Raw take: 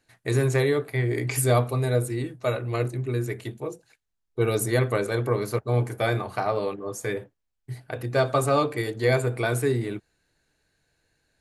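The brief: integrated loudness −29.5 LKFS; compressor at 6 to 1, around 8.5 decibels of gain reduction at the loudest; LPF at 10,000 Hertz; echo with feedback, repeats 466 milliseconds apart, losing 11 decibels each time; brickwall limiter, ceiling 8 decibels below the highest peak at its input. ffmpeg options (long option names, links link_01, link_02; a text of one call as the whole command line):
ffmpeg -i in.wav -af "lowpass=10000,acompressor=threshold=-26dB:ratio=6,alimiter=limit=-22.5dB:level=0:latency=1,aecho=1:1:466|932|1398:0.282|0.0789|0.0221,volume=4dB" out.wav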